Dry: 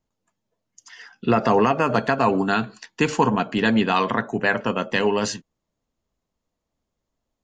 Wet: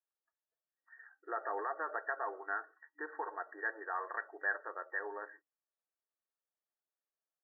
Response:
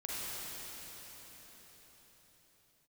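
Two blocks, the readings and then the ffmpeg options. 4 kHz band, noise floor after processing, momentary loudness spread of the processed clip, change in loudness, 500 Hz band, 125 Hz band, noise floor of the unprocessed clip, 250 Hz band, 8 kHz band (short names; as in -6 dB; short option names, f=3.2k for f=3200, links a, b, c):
under -40 dB, under -85 dBFS, 12 LU, -18.5 dB, -22.0 dB, under -40 dB, -82 dBFS, -34.0 dB, under -40 dB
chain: -af "afftfilt=real='re*between(b*sr/4096,300,1900)':imag='im*between(b*sr/4096,300,1900)':win_size=4096:overlap=0.75,asuperstop=centerf=1000:order=4:qfactor=7.6,aderivative,volume=1dB"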